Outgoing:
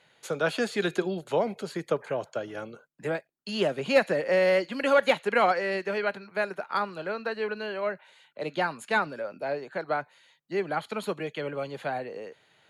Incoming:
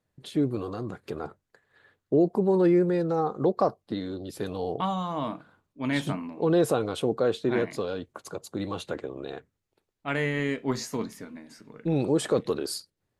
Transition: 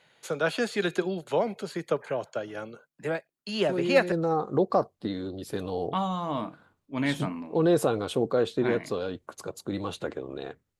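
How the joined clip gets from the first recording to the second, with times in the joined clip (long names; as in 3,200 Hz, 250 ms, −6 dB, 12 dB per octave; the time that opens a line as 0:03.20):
outgoing
0:03.69: mix in incoming from 0:02.56 0.43 s −8.5 dB
0:04.12: continue with incoming from 0:02.99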